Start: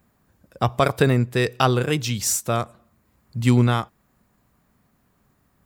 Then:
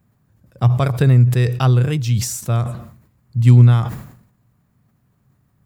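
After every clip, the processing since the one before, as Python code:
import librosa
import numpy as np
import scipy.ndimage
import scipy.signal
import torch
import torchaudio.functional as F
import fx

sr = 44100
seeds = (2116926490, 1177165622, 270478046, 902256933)

y = fx.peak_eq(x, sr, hz=120.0, db=15.0, octaves=1.1)
y = fx.sustainer(y, sr, db_per_s=84.0)
y = F.gain(torch.from_numpy(y), -4.5).numpy()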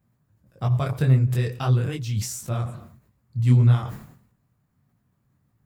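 y = fx.detune_double(x, sr, cents=56)
y = F.gain(torch.from_numpy(y), -3.5).numpy()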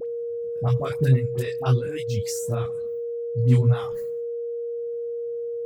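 y = fx.dereverb_blind(x, sr, rt60_s=1.2)
y = y + 10.0 ** (-27.0 / 20.0) * np.sin(2.0 * np.pi * 470.0 * np.arange(len(y)) / sr)
y = fx.dispersion(y, sr, late='highs', ms=61.0, hz=1100.0)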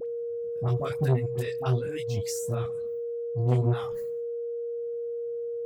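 y = fx.transformer_sat(x, sr, knee_hz=360.0)
y = F.gain(torch.from_numpy(y), -3.0).numpy()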